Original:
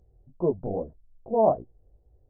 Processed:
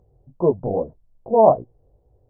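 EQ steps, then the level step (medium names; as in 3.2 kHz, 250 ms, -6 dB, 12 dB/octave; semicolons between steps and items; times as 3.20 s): graphic EQ 125/250/500/1000 Hz +9/+4/+7/+11 dB; -2.0 dB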